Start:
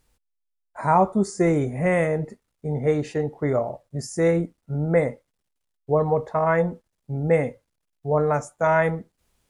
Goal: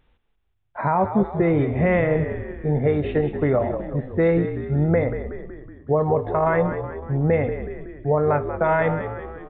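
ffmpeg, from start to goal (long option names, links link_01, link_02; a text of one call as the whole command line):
ffmpeg -i in.wav -filter_complex "[0:a]alimiter=limit=-16dB:level=0:latency=1:release=238,asplit=8[link_01][link_02][link_03][link_04][link_05][link_06][link_07][link_08];[link_02]adelay=186,afreqshift=-49,volume=-9.5dB[link_09];[link_03]adelay=372,afreqshift=-98,volume=-14.2dB[link_10];[link_04]adelay=558,afreqshift=-147,volume=-19dB[link_11];[link_05]adelay=744,afreqshift=-196,volume=-23.7dB[link_12];[link_06]adelay=930,afreqshift=-245,volume=-28.4dB[link_13];[link_07]adelay=1116,afreqshift=-294,volume=-33.2dB[link_14];[link_08]adelay=1302,afreqshift=-343,volume=-37.9dB[link_15];[link_01][link_09][link_10][link_11][link_12][link_13][link_14][link_15]amix=inputs=8:normalize=0,aresample=8000,aresample=44100,volume=5dB" out.wav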